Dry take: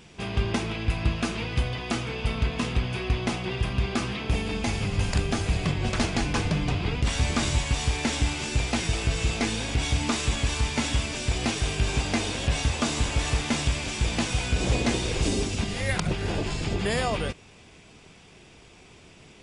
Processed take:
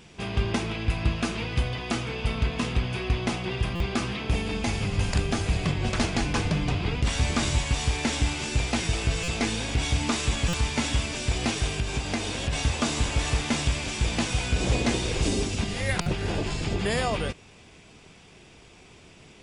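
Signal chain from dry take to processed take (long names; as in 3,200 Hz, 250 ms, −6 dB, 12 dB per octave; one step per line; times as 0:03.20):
0:11.66–0:12.53: downward compressor 3 to 1, threshold −25 dBFS, peak gain reduction 5.5 dB
buffer that repeats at 0:03.75/0:09.23/0:10.48/0:16.01, samples 256, times 8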